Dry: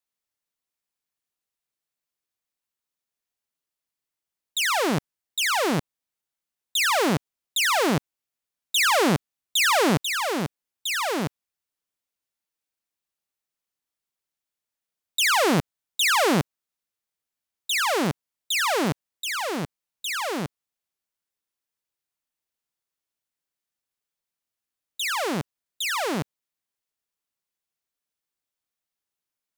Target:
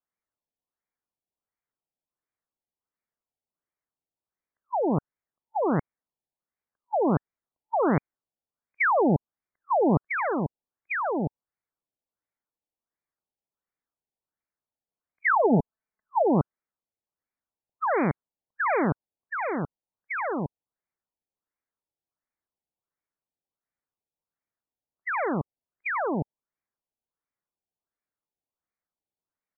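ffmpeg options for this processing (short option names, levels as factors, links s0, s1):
-filter_complex "[0:a]asplit=3[s0][s1][s2];[s0]afade=t=out:st=15.23:d=0.02[s3];[s1]aecho=1:1:4.6:0.47,afade=t=in:st=15.23:d=0.02,afade=t=out:st=16.23:d=0.02[s4];[s2]afade=t=in:st=16.23:d=0.02[s5];[s3][s4][s5]amix=inputs=3:normalize=0,afftfilt=real='re*lt(b*sr/1024,880*pow(2500/880,0.5+0.5*sin(2*PI*1.4*pts/sr)))':imag='im*lt(b*sr/1024,880*pow(2500/880,0.5+0.5*sin(2*PI*1.4*pts/sr)))':win_size=1024:overlap=0.75"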